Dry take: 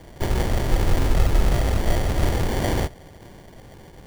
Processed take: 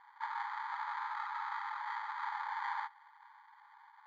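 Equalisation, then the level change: boxcar filter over 16 samples; brick-wall FIR high-pass 810 Hz; distance through air 200 m; +1.0 dB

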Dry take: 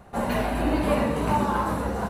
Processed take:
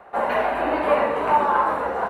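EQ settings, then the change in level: three-band isolator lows -23 dB, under 410 Hz, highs -20 dB, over 2.6 kHz; +7.5 dB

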